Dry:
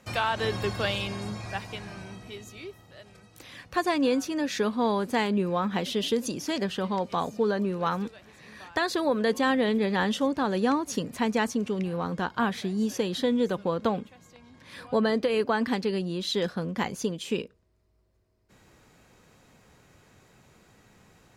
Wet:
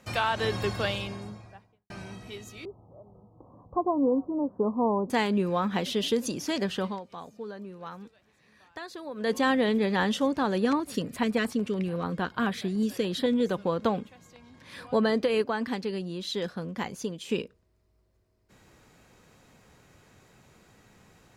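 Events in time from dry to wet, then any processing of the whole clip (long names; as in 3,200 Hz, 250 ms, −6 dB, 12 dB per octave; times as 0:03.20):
0:00.68–0:01.90: fade out and dull
0:02.65–0:05.10: Butterworth low-pass 1,100 Hz 72 dB per octave
0:06.82–0:09.34: duck −13.5 dB, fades 0.19 s
0:10.58–0:13.46: auto-filter notch square 6.9 Hz 870–6,200 Hz
0:15.42–0:17.29: clip gain −4 dB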